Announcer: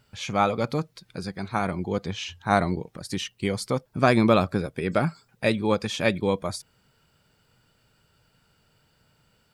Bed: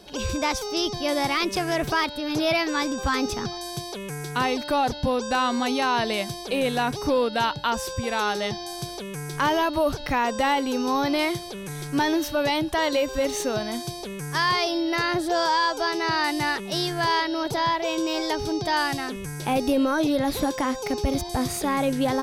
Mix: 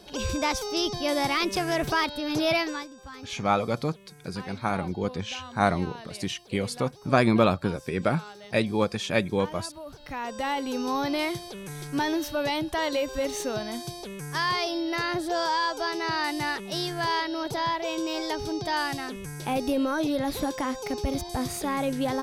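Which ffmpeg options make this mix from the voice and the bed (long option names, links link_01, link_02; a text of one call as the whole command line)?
ffmpeg -i stem1.wav -i stem2.wav -filter_complex "[0:a]adelay=3100,volume=-1.5dB[link_01];[1:a]volume=13.5dB,afade=type=out:start_time=2.57:duration=0.31:silence=0.133352,afade=type=in:start_time=9.86:duration=0.92:silence=0.177828[link_02];[link_01][link_02]amix=inputs=2:normalize=0" out.wav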